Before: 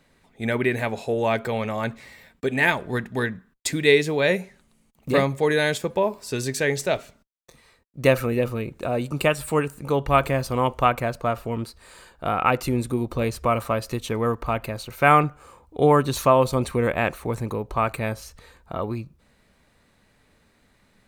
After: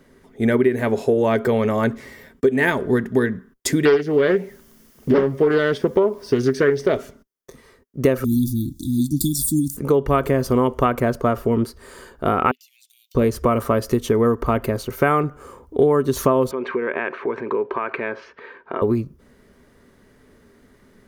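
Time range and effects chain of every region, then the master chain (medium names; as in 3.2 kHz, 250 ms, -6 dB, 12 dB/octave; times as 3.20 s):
3.85–6.94 s: Savitzky-Golay filter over 15 samples + word length cut 10-bit, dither triangular + loudspeaker Doppler distortion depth 0.46 ms
8.24–9.77 s: brick-wall FIR band-stop 330–3300 Hz + treble shelf 3.5 kHz +11 dB + comb 2.6 ms, depth 31%
12.51–13.15 s: steep high-pass 2.7 kHz 48 dB/octave + peaking EQ 9.7 kHz -11 dB 0.54 oct + compression 5:1, threshold -53 dBFS
16.51–18.82 s: compression 16:1, threshold -28 dBFS + cabinet simulation 340–3600 Hz, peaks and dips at 380 Hz +4 dB, 980 Hz +7 dB, 1.6 kHz +9 dB, 2.4 kHz +10 dB
whole clip: graphic EQ with 31 bands 250 Hz +7 dB, 400 Hz +11 dB, 800 Hz -5 dB, 2.5 kHz -9 dB, 4 kHz -9 dB, 8 kHz -6 dB; compression 6:1, threshold -20 dBFS; trim +6.5 dB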